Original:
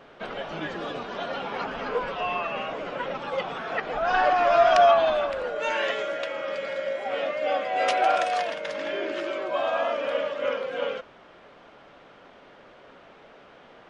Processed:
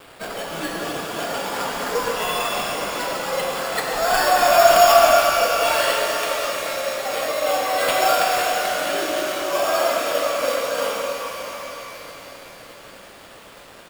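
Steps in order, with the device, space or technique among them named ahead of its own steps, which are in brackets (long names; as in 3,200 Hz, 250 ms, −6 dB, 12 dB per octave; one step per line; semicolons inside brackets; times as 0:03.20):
reverb reduction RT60 0.69 s
high-shelf EQ 2,500 Hz +3 dB
repeating echo 614 ms, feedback 52%, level −15 dB
early 8-bit sampler (sample-rate reduction 6,100 Hz, jitter 0%; bit reduction 8 bits)
reverb with rising layers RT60 3.3 s, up +12 semitones, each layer −8 dB, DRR −1.5 dB
level +2.5 dB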